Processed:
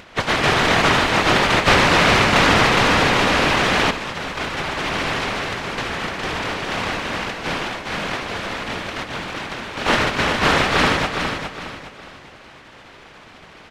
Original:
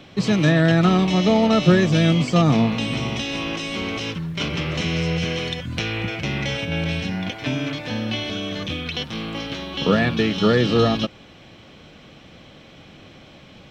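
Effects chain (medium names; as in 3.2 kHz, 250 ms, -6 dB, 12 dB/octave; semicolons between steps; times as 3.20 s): spectral contrast reduction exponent 0.1; low-pass 2.3 kHz 12 dB/octave; upward compressor, threshold -46 dBFS; whisper effect; vibrato 14 Hz 95 cents; feedback delay 412 ms, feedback 34%, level -6.5 dB; reverberation RT60 1.6 s, pre-delay 114 ms, DRR 15 dB; 1.73–3.91 s: level flattener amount 70%; trim +6 dB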